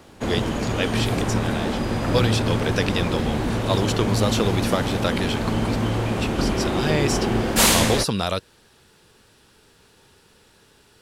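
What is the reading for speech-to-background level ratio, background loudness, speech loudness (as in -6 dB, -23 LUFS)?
-3.5 dB, -23.0 LUFS, -26.5 LUFS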